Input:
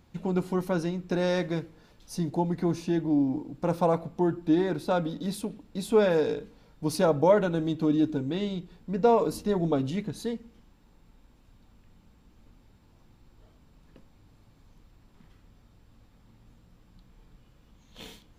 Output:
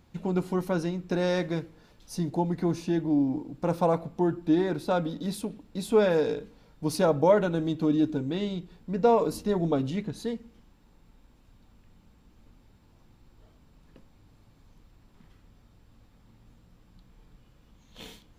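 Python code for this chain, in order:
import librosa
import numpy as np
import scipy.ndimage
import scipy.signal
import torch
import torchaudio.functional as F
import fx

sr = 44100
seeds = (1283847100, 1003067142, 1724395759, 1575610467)

y = fx.high_shelf(x, sr, hz=8300.0, db=-5.5, at=(9.88, 10.28))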